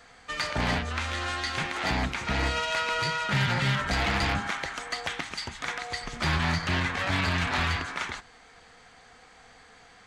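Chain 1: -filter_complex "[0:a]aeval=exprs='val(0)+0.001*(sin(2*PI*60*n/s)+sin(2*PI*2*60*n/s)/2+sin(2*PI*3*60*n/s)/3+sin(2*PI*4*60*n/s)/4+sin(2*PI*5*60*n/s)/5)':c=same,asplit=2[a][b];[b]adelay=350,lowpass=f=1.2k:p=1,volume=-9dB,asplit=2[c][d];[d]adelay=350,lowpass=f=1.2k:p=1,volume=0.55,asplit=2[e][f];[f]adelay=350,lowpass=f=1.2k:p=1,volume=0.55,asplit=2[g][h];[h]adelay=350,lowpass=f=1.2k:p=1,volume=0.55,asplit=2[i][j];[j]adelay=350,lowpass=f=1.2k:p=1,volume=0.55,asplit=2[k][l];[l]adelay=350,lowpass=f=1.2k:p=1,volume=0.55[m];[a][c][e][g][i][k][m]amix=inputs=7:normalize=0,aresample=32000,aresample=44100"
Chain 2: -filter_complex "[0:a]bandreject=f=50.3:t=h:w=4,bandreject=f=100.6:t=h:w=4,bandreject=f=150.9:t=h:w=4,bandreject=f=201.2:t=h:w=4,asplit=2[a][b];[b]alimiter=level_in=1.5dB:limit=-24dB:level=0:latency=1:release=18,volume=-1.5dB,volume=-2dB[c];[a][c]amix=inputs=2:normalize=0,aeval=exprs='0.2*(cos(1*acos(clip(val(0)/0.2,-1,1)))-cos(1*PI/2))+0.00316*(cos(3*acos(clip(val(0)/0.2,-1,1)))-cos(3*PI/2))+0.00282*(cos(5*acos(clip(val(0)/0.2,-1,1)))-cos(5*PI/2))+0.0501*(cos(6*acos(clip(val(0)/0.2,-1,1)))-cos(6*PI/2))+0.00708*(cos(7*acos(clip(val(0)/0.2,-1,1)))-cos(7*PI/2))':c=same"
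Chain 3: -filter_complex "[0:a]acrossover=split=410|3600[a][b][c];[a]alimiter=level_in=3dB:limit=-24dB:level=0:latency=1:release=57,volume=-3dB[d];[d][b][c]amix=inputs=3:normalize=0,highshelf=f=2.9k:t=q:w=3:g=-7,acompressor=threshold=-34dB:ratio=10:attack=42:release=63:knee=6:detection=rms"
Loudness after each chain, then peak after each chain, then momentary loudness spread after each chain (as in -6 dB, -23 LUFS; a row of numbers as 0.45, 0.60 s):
-28.0, -24.0, -33.5 LUFS; -15.5, -11.5, -19.0 dBFS; 8, 7, 18 LU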